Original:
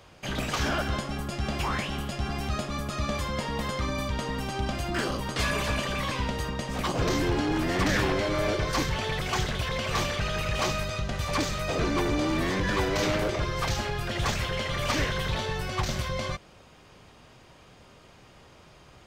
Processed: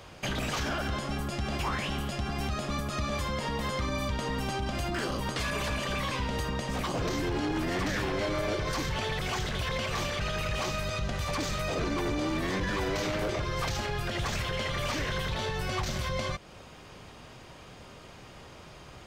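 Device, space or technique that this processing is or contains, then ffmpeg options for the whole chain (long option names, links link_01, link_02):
stacked limiters: -af "alimiter=limit=-21dB:level=0:latency=1,alimiter=level_in=3dB:limit=-24dB:level=0:latency=1:release=241,volume=-3dB,volume=4.5dB"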